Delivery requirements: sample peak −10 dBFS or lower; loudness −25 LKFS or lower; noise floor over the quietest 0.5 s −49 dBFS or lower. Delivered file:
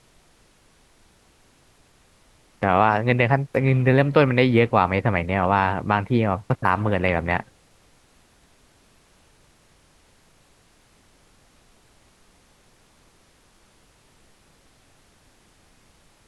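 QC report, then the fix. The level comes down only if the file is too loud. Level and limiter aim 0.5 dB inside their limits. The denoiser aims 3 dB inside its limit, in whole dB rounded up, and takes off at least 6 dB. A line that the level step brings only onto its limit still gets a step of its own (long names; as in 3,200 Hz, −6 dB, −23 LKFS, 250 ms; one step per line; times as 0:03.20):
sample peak −3.5 dBFS: out of spec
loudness −20.5 LKFS: out of spec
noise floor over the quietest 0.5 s −58 dBFS: in spec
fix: level −5 dB
brickwall limiter −10.5 dBFS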